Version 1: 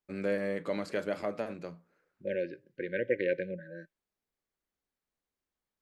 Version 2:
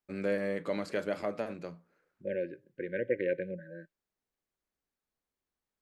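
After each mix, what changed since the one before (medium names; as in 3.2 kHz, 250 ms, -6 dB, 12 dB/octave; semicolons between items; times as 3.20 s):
second voice: add distance through air 350 m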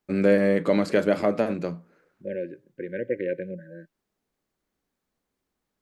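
first voice +9.0 dB; master: add peaking EQ 230 Hz +5.5 dB 2.2 oct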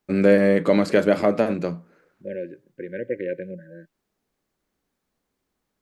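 first voice +3.5 dB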